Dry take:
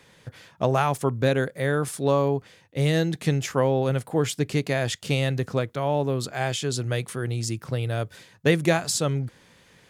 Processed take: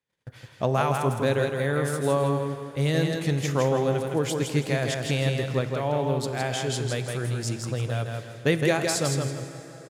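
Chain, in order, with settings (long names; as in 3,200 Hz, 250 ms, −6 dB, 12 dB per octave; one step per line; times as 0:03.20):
noise gate −51 dBFS, range −31 dB
repeating echo 163 ms, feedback 29%, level −4.5 dB
dense smooth reverb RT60 4.2 s, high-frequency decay 0.7×, DRR 10.5 dB
level −2.5 dB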